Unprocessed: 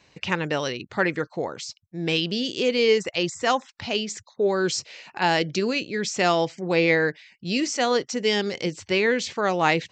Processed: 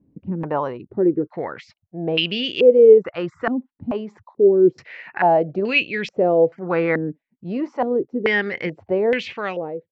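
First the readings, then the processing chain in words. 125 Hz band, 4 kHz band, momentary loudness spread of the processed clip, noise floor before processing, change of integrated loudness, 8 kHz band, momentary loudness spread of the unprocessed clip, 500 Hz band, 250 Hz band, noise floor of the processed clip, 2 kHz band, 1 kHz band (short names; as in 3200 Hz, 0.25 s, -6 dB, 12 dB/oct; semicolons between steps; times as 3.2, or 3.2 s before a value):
+1.0 dB, -2.0 dB, 15 LU, -62 dBFS, +4.5 dB, under -20 dB, 9 LU, +7.0 dB, +3.5 dB, -79 dBFS, 0.0 dB, +1.0 dB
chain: ending faded out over 0.77 s; stepped low-pass 2.3 Hz 260–2600 Hz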